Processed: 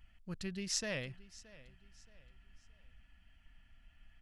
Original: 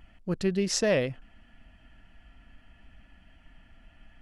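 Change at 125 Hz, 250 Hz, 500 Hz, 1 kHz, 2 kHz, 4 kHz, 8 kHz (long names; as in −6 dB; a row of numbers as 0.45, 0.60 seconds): −12.0, −14.0, −18.0, −14.0, −8.5, −6.5, −6.0 decibels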